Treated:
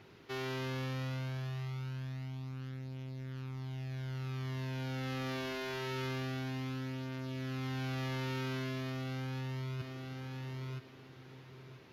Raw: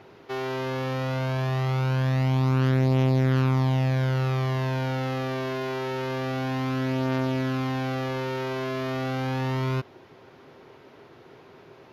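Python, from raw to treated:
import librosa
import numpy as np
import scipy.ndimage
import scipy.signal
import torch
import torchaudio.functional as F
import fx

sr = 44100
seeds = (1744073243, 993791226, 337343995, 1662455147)

p1 = x + fx.echo_feedback(x, sr, ms=982, feedback_pct=23, wet_db=-11, dry=0)
p2 = fx.over_compress(p1, sr, threshold_db=-30.0, ratio=-1.0)
p3 = fx.peak_eq(p2, sr, hz=660.0, db=-10.5, octaves=2.1)
y = p3 * librosa.db_to_amplitude(-6.0)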